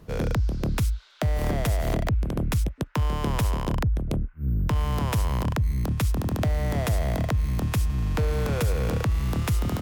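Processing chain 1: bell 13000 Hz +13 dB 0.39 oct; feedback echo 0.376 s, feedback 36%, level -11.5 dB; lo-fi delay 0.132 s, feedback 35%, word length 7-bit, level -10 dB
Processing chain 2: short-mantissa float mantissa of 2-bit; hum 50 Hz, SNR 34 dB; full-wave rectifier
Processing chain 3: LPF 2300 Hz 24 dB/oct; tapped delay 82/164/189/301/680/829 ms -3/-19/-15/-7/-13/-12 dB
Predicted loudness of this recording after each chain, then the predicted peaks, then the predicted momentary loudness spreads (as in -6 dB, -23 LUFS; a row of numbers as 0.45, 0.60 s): -25.0, -31.0, -24.5 LUFS; -9.5, -18.0, -11.5 dBFS; 3, 3, 2 LU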